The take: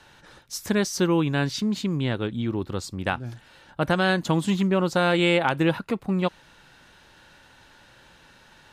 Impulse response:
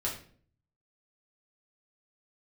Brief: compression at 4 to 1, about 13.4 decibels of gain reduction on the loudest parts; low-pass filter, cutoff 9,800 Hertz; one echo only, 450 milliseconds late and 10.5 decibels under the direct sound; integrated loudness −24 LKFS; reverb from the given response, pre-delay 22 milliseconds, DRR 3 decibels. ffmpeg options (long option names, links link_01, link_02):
-filter_complex "[0:a]lowpass=9800,acompressor=threshold=-34dB:ratio=4,aecho=1:1:450:0.299,asplit=2[link_01][link_02];[1:a]atrim=start_sample=2205,adelay=22[link_03];[link_02][link_03]afir=irnorm=-1:irlink=0,volume=-7.5dB[link_04];[link_01][link_04]amix=inputs=2:normalize=0,volume=10.5dB"